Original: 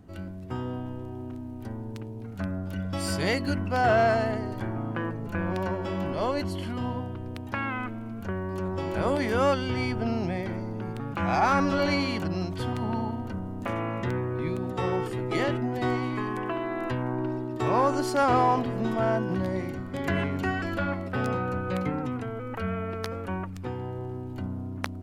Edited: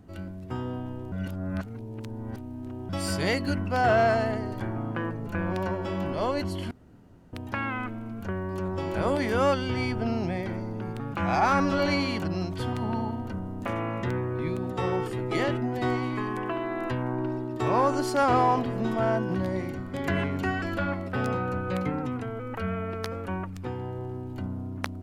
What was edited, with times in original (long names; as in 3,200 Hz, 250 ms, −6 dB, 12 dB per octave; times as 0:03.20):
0:01.12–0:02.89: reverse
0:06.71–0:07.33: fill with room tone